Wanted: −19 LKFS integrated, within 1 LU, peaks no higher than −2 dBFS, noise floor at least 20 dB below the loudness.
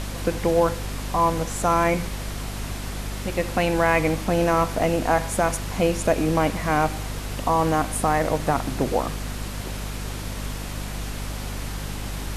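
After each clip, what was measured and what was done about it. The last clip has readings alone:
mains hum 50 Hz; hum harmonics up to 250 Hz; level of the hum −29 dBFS; background noise floor −32 dBFS; target noise floor −45 dBFS; integrated loudness −24.5 LKFS; sample peak −6.5 dBFS; target loudness −19.0 LKFS
→ hum removal 50 Hz, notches 5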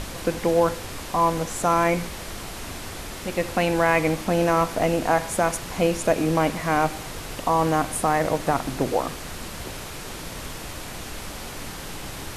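mains hum none found; background noise floor −36 dBFS; target noise floor −45 dBFS
→ noise reduction from a noise print 9 dB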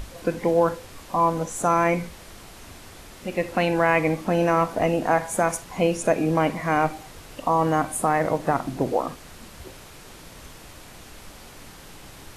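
background noise floor −45 dBFS; integrated loudness −23.5 LKFS; sample peak −7.0 dBFS; target loudness −19.0 LKFS
→ level +4.5 dB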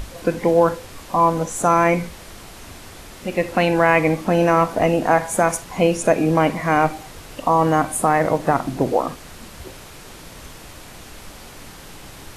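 integrated loudness −19.0 LKFS; sample peak −2.5 dBFS; background noise floor −40 dBFS

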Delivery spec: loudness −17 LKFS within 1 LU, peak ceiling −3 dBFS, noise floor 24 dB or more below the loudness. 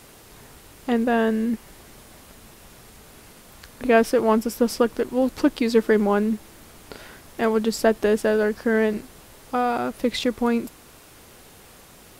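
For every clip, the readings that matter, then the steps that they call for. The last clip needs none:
crackle rate 30 per second; integrated loudness −22.5 LKFS; sample peak −5.0 dBFS; target loudness −17.0 LKFS
→ click removal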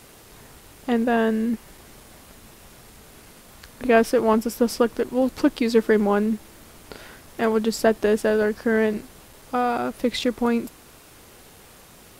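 crackle rate 0.66 per second; integrated loudness −22.5 LKFS; sample peak −5.0 dBFS; target loudness −17.0 LKFS
→ level +5.5 dB
brickwall limiter −3 dBFS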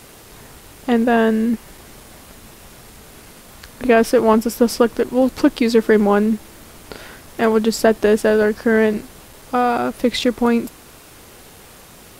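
integrated loudness −17.0 LKFS; sample peak −3.0 dBFS; background noise floor −43 dBFS

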